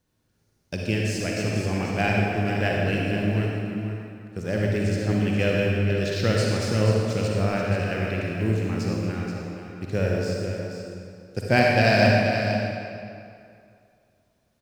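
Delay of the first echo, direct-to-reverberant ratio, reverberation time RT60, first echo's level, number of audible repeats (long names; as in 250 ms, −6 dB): 480 ms, −3.0 dB, 2.5 s, −8.5 dB, 1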